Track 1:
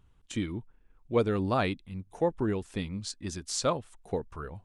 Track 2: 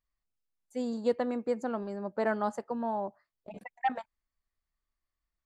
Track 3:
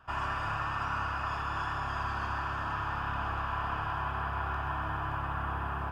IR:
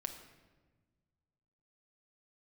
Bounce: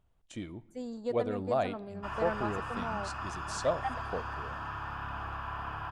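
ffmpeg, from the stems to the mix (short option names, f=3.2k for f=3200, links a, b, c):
-filter_complex "[0:a]equalizer=f=650:t=o:w=0.58:g=12.5,volume=-11dB,asplit=2[a][b];[b]volume=-10dB[c];[1:a]volume=-6.5dB[d];[2:a]adelay=1950,volume=-5dB[e];[3:a]atrim=start_sample=2205[f];[c][f]afir=irnorm=-1:irlink=0[g];[a][d][e][g]amix=inputs=4:normalize=0"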